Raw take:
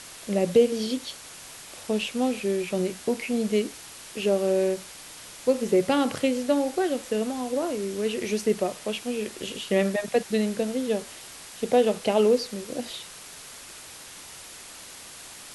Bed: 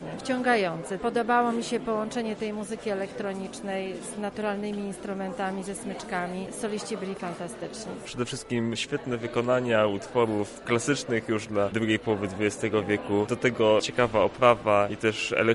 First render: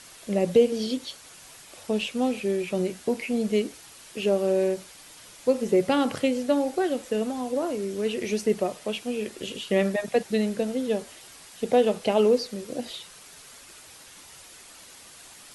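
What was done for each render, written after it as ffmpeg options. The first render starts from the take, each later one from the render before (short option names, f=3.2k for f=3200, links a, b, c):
-af "afftdn=nr=6:nf=-44"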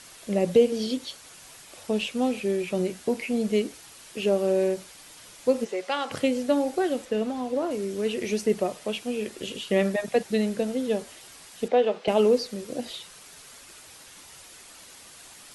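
-filter_complex "[0:a]asplit=3[a][b][c];[a]afade=t=out:st=5.64:d=0.02[d];[b]highpass=710,lowpass=7k,afade=t=in:st=5.64:d=0.02,afade=t=out:st=6.1:d=0.02[e];[c]afade=t=in:st=6.1:d=0.02[f];[d][e][f]amix=inputs=3:normalize=0,asettb=1/sr,asplit=3[g][h][i];[g]atrim=end=7.054[j];[h]atrim=start=7.05:end=7.71,asetpts=PTS-STARTPTS,afade=t=in:d=0.004:c=qsin,afade=t=out:st=0.656:d=0.004:c=qsin,acrossover=split=5200[k][l];[l]acompressor=threshold=-56dB:ratio=4:attack=1:release=60[m];[k][m]amix=inputs=2:normalize=0[n];[i]atrim=start=7.706[o];[j][n]acrossfade=d=0.004:c1=hsin:c2=qsin[p];[p][o]acrossfade=d=0.004:c1=qsin:c2=hsin,asettb=1/sr,asplit=3[q][r][s];[q]atrim=end=11.684[t];[r]atrim=start=11.68:end=12.08,asetpts=PTS-STARTPTS,afade=t=in:d=0.004:c=qsin,afade=t=out:st=0.396:d=0.004:c=qsin,highpass=330,lowpass=3.6k[u];[s]atrim=start=12.076[v];[t][u]acrossfade=d=0.004:c1=hsin:c2=qsin[w];[w][v]acrossfade=d=0.004:c1=qsin:c2=hsin"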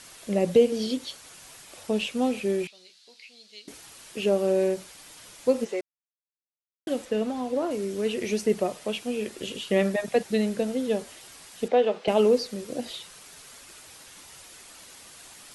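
-filter_complex "[0:a]asettb=1/sr,asplit=3[a][b][c];[a]atrim=end=2.674[d];[b]atrim=start=2.67:end=3.68,asetpts=PTS-STARTPTS,afade=t=in:d=0.004:c=qsin,afade=t=out:st=1.006:d=0.004:c=qsin,bandpass=f=4.2k:t=q:w=4[e];[c]atrim=start=3.676[f];[d][e]acrossfade=d=0.004:c1=hsin:c2=qsin[g];[g][f]acrossfade=d=0.004:c1=qsin:c2=hsin,asplit=3[h][i][j];[h]atrim=end=5.81,asetpts=PTS-STARTPTS,afade=t=out:st=5.806:d=0.004:c=hsin[k];[i]atrim=start=5.81:end=6.87,asetpts=PTS-STARTPTS,volume=0[l];[j]atrim=start=6.87,asetpts=PTS-STARTPTS,afade=t=in:d=0.004:c=hsin[m];[k][l][m]concat=n=3:v=0:a=1"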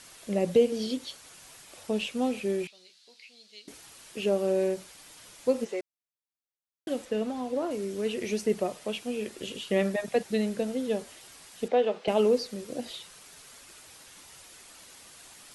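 -af "volume=-3dB"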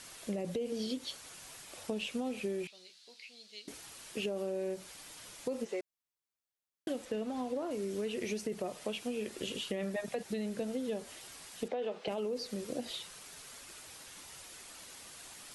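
-af "alimiter=limit=-21dB:level=0:latency=1:release=10,acompressor=threshold=-33dB:ratio=6"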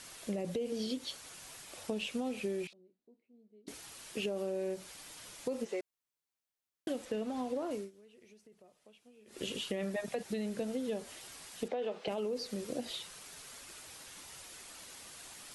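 -filter_complex "[0:a]asettb=1/sr,asplit=3[a][b][c];[a]atrim=end=2.734[d];[b]atrim=start=2.73:end=3.67,asetpts=PTS-STARTPTS,afade=t=in:d=0.004:c=qsin,afade=t=out:st=0.936:d=0.004:c=qsin,lowpass=f=300:t=q:w=1.6[e];[c]atrim=start=3.666[f];[d][e]acrossfade=d=0.004:c1=hsin:c2=qsin[g];[g][f]acrossfade=d=0.004:c1=qsin:c2=hsin,asplit=3[h][i][j];[h]atrim=end=7.91,asetpts=PTS-STARTPTS,afade=t=out:st=7.74:d=0.17:silence=0.0668344[k];[i]atrim=start=7.91:end=9.26,asetpts=PTS-STARTPTS,volume=-23.5dB[l];[j]atrim=start=9.26,asetpts=PTS-STARTPTS,afade=t=in:d=0.17:silence=0.0668344[m];[k][l][m]concat=n=3:v=0:a=1"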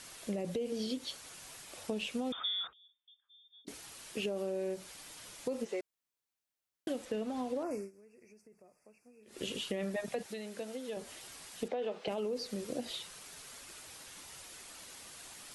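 -filter_complex "[0:a]asettb=1/sr,asplit=3[a][b][c];[a]atrim=end=2.324[d];[b]atrim=start=2.32:end=3.65,asetpts=PTS-STARTPTS,afade=t=in:d=0.004:c=qsin,afade=t=out:st=1.326:d=0.004:c=qsin,lowpass=f=3.2k:t=q:w=0.5098,lowpass=f=3.2k:t=q:w=0.6013,lowpass=f=3.2k:t=q:w=0.9,lowpass=f=3.2k:t=q:w=2.563,afreqshift=-3800[e];[c]atrim=start=3.646[f];[d][e]acrossfade=d=0.004:c1=hsin:c2=qsin[g];[g][f]acrossfade=d=0.004:c1=qsin:c2=hsin,asettb=1/sr,asplit=3[h][i][j];[h]atrim=end=7.634[k];[i]atrim=start=7.63:end=9.23,asetpts=PTS-STARTPTS,afade=t=in:d=0.004:c=qsin,afade=t=out:st=1.596:d=0.004:c=qsin,asuperstop=centerf=3500:order=20:qfactor=1.9[l];[j]atrim=start=9.226[m];[k][l]acrossfade=d=0.004:c1=hsin:c2=qsin[n];[n][m]acrossfade=d=0.004:c1=qsin:c2=hsin,asettb=1/sr,asplit=3[o][p][q];[o]atrim=end=10.264[r];[p]atrim=start=10.26:end=10.97,asetpts=PTS-STARTPTS,afade=t=in:d=0.004:c=qsin,afade=t=out:st=0.706:d=0.004:c=qsin,highpass=f=570:p=1[s];[q]atrim=start=10.966[t];[r][s]acrossfade=d=0.004:c1=hsin:c2=qsin[u];[u][t]acrossfade=d=0.004:c1=qsin:c2=hsin"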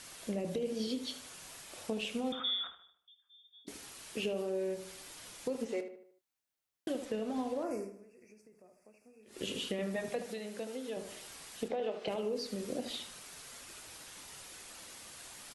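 -filter_complex "[0:a]asplit=2[a][b];[b]adelay=27,volume=-13.5dB[c];[a][c]amix=inputs=2:normalize=0,asplit=2[d][e];[e]adelay=76,lowpass=f=2.5k:p=1,volume=-9dB,asplit=2[f][g];[g]adelay=76,lowpass=f=2.5k:p=1,volume=0.47,asplit=2[h][i];[i]adelay=76,lowpass=f=2.5k:p=1,volume=0.47,asplit=2[j][k];[k]adelay=76,lowpass=f=2.5k:p=1,volume=0.47,asplit=2[l][m];[m]adelay=76,lowpass=f=2.5k:p=1,volume=0.47[n];[d][f][h][j][l][n]amix=inputs=6:normalize=0"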